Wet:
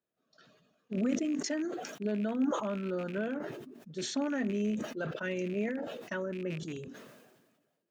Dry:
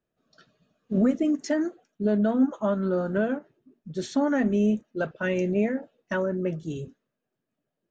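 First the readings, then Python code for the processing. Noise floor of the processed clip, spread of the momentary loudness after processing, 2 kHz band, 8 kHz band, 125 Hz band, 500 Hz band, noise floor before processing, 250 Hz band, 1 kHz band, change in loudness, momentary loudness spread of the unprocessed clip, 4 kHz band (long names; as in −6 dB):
−80 dBFS, 10 LU, −6.0 dB, can't be measured, −8.5 dB, −8.5 dB, −84 dBFS, −8.0 dB, −6.5 dB, −8.0 dB, 11 LU, +1.0 dB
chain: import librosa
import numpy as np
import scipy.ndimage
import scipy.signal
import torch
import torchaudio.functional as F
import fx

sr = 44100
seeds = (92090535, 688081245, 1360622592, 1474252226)

y = fx.rattle_buzz(x, sr, strikes_db=-31.0, level_db=-32.0)
y = fx.highpass(y, sr, hz=240.0, slope=6)
y = fx.dynamic_eq(y, sr, hz=790.0, q=1.0, threshold_db=-38.0, ratio=4.0, max_db=-6)
y = fx.sustainer(y, sr, db_per_s=41.0)
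y = y * librosa.db_to_amplitude(-5.5)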